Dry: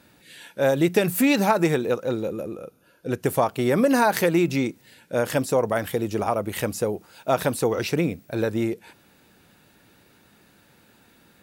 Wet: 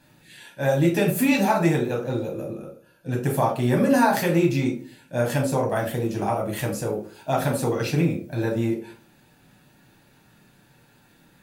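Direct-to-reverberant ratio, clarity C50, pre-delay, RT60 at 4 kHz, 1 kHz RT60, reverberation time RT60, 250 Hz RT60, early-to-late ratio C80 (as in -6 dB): -1.0 dB, 8.5 dB, 7 ms, 0.30 s, 0.35 s, 0.40 s, 0.55 s, 13.5 dB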